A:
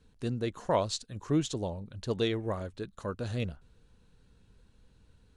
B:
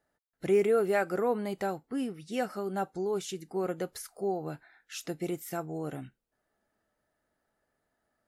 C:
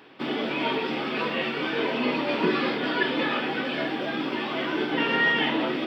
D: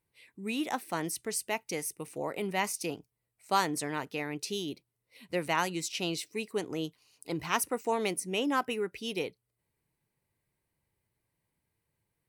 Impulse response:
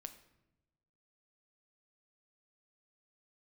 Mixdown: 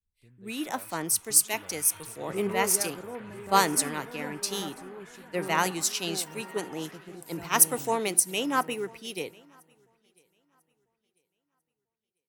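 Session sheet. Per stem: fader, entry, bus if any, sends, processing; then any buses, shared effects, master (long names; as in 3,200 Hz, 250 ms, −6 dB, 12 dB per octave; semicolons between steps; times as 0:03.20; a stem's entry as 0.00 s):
−10.0 dB, 0.00 s, no send, no echo send, downward compressor 2 to 1, threshold −42 dBFS, peak gain reduction 11 dB
−11.0 dB, 1.85 s, no send, echo send −8 dB, low-shelf EQ 200 Hz +11 dB
−9.5 dB, 0.30 s, no send, echo send −3.5 dB, auto-filter band-pass saw down 0.54 Hz 770–1,800 Hz; automatic ducking −9 dB, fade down 1.10 s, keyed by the fourth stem
−1.5 dB, 0.00 s, send −11.5 dB, echo send −18.5 dB, no processing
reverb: on, RT60 1.0 s, pre-delay 7 ms
echo: repeating echo 995 ms, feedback 47%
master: high-shelf EQ 5,300 Hz +12 dB; multiband upward and downward expander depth 70%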